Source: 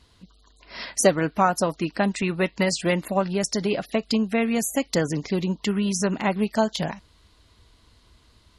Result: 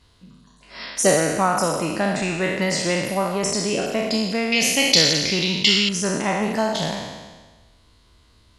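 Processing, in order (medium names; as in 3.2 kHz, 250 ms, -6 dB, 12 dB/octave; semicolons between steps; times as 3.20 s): spectral sustain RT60 1.37 s; 4.52–5.89 s: high-order bell 3.6 kHz +15 dB; trim -2 dB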